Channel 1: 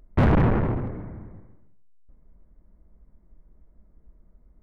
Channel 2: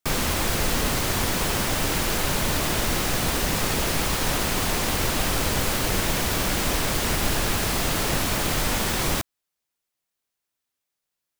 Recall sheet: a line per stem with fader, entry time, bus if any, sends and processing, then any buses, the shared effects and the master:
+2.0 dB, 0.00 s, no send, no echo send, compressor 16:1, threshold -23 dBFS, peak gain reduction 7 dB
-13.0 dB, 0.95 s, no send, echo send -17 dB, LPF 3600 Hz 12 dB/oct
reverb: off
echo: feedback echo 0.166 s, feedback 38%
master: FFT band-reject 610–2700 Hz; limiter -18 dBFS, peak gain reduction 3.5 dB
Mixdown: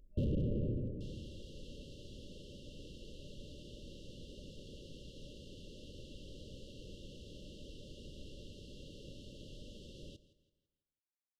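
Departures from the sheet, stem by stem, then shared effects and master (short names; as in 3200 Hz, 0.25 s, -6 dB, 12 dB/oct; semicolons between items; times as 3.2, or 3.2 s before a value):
stem 1 +2.0 dB -> -8.5 dB; stem 2 -13.0 dB -> -24.5 dB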